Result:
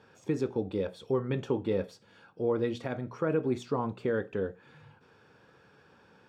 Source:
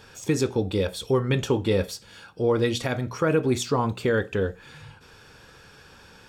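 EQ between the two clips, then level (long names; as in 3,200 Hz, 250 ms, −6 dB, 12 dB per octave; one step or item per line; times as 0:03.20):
high-pass filter 140 Hz 12 dB per octave
low-pass filter 1,100 Hz 6 dB per octave
−5.5 dB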